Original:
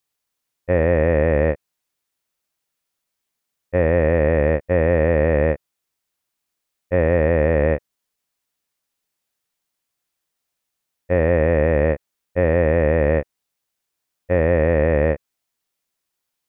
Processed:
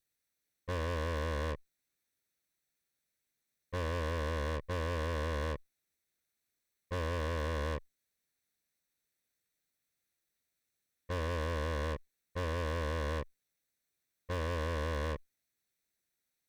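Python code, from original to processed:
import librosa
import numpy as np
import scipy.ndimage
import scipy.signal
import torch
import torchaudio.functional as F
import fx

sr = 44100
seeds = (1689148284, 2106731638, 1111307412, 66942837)

y = fx.lower_of_two(x, sr, delay_ms=0.49)
y = fx.tube_stage(y, sr, drive_db=30.0, bias=0.25)
y = y * librosa.db_to_amplitude(-3.5)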